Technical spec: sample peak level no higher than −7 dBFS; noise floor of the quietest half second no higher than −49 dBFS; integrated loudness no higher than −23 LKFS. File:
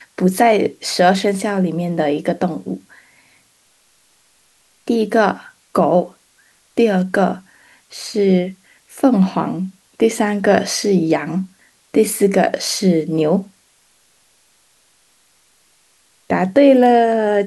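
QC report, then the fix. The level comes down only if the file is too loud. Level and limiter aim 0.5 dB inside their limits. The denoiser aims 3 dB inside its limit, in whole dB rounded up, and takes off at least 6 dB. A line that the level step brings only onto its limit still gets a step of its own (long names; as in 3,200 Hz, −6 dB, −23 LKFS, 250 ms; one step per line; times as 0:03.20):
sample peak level −1.5 dBFS: out of spec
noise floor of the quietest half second −57 dBFS: in spec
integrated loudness −16.5 LKFS: out of spec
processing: level −7 dB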